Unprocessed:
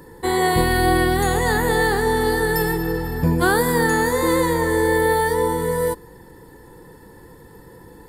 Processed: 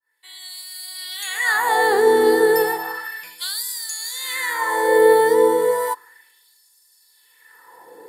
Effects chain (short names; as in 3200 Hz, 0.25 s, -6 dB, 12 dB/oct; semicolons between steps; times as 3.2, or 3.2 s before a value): opening faded in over 1.46 s; LFO high-pass sine 0.33 Hz 360–5400 Hz